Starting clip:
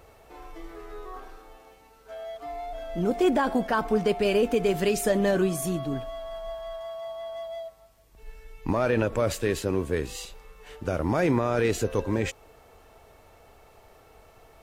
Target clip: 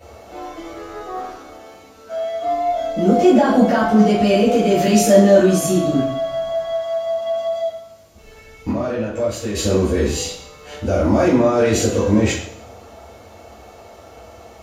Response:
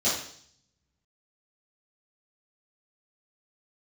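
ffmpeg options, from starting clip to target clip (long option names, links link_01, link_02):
-filter_complex "[0:a]asettb=1/sr,asplit=3[link_01][link_02][link_03];[link_01]atrim=end=8.674[link_04];[link_02]atrim=start=8.67:end=9.55,asetpts=PTS-STARTPTS,afade=type=in:duration=0.004:curve=qsin,afade=type=out:start_time=0.876:duration=0.004:curve=qsin,acompressor=threshold=-33dB:ratio=12[link_05];[link_03]atrim=start=9.546[link_06];[link_04][link_05]acrossfade=duration=0.004:curve1=hsin:curve2=qsin[link_07];[link_07][link_06]acrossfade=duration=0.004:curve1=qsin:curve2=hsin,alimiter=limit=-20dB:level=0:latency=1:release=20[link_08];[1:a]atrim=start_sample=2205[link_09];[link_08][link_09]afir=irnorm=-1:irlink=0"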